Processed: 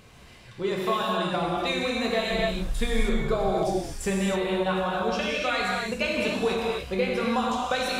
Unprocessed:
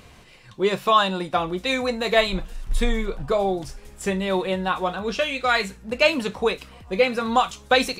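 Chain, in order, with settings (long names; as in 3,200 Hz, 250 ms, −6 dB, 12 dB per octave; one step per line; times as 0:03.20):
downward compressor, threshold −21 dBFS, peak gain reduction 9 dB
reverb whose tail is shaped and stops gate 320 ms flat, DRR −3.5 dB
speech leveller within 3 dB 0.5 s
level −4 dB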